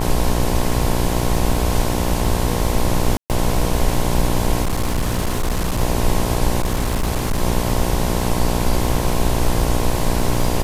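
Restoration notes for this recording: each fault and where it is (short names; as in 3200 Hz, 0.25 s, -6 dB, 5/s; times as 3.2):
buzz 60 Hz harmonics 18 -22 dBFS
crackle 42/s -24 dBFS
3.17–3.3 gap 0.128 s
4.63–5.81 clipped -15.5 dBFS
6.6–7.43 clipped -15 dBFS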